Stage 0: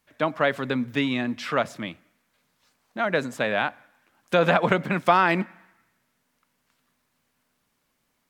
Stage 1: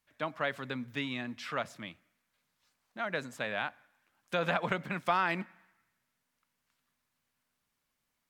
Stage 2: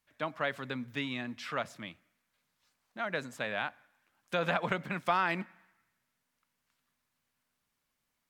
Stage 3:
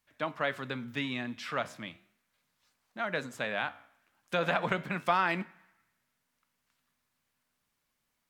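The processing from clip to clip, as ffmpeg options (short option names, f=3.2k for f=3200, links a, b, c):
-af "equalizer=f=350:w=0.52:g=-5.5,volume=-8dB"
-af anull
-af "flanger=delay=9.1:depth=7.5:regen=-83:speed=0.37:shape=sinusoidal,volume=6dB"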